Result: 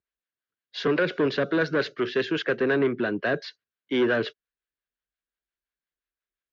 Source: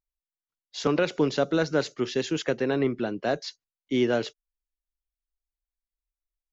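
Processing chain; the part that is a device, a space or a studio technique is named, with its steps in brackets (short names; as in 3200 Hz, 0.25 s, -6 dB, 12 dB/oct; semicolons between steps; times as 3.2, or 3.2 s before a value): guitar amplifier with harmonic tremolo (harmonic tremolo 5.7 Hz, depth 50%, crossover 540 Hz; soft clip -25 dBFS, distortion -10 dB; speaker cabinet 97–4000 Hz, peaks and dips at 410 Hz +4 dB, 840 Hz -8 dB, 1600 Hz +9 dB); gain +6 dB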